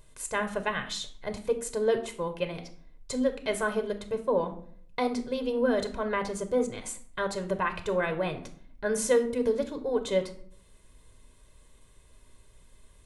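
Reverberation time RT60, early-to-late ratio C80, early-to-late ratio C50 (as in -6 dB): 0.55 s, 16.5 dB, 12.0 dB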